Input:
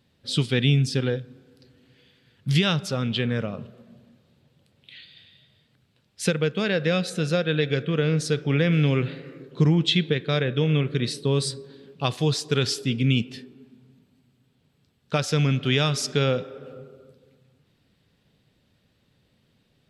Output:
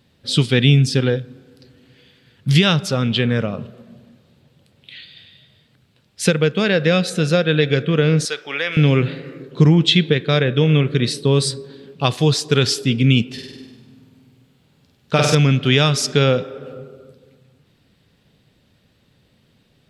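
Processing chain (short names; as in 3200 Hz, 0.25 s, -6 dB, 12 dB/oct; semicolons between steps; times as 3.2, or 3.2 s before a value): 8.25–8.77 HPF 800 Hz 12 dB/oct; 13.33–15.35 flutter echo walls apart 8.5 m, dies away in 1 s; gain +7 dB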